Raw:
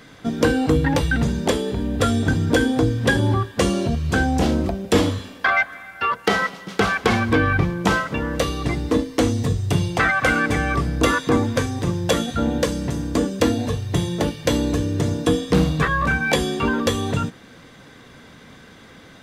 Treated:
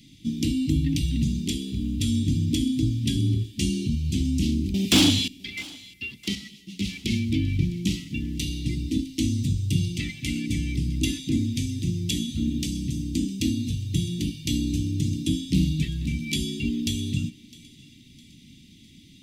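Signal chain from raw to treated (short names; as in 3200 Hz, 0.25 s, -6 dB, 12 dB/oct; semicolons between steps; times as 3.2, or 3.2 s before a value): inverse Chebyshev band-stop 490–1600 Hz, stop band 40 dB; 1.19–1.95 crackle 39/s -> 150/s -45 dBFS; 4.74–5.28 overdrive pedal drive 27 dB, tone 5900 Hz, clips at -5 dBFS; thinning echo 0.658 s, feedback 47%, high-pass 570 Hz, level -20 dB; 6.35–6.85 ensemble effect; gain -3 dB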